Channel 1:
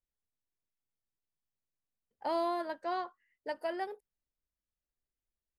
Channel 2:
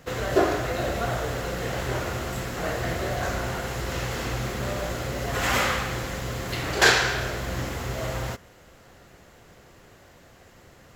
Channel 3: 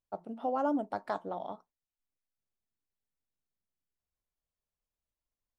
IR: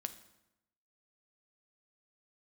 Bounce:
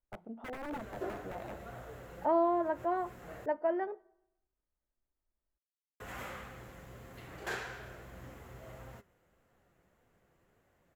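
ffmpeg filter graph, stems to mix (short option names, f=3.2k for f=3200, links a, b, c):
-filter_complex "[0:a]lowpass=1.6k,aecho=1:1:3.2:0.39,volume=1dB,asplit=3[a][b][c];[b]volume=-8.5dB[d];[1:a]flanger=delay=3.7:depth=2.7:regen=77:speed=1.7:shape=triangular,adelay=650,volume=-14.5dB,asplit=3[e][f][g];[e]atrim=end=3.46,asetpts=PTS-STARTPTS,afade=t=out:st=3.456:d=0.004:c=hsin[h];[f]atrim=start=3.46:end=6,asetpts=PTS-STARTPTS,volume=0[i];[g]atrim=start=6,asetpts=PTS-STARTPTS,afade=t=in:d=0.004:c=hsin[j];[h][i][j]concat=n=3:v=0:a=1[k];[2:a]acompressor=threshold=-34dB:ratio=2.5,aeval=exprs='(mod(33.5*val(0)+1,2)-1)/33.5':c=same,lowpass=f=1.5k:p=1,volume=-4.5dB,asplit=2[l][m];[m]volume=-12dB[n];[c]apad=whole_len=511826[o];[k][o]sidechaincompress=threshold=-40dB:ratio=8:attack=6.6:release=107[p];[3:a]atrim=start_sample=2205[q];[d][n]amix=inputs=2:normalize=0[r];[r][q]afir=irnorm=-1:irlink=0[s];[a][p][l][s]amix=inputs=4:normalize=0,equalizer=f=4.8k:w=0.94:g=-10"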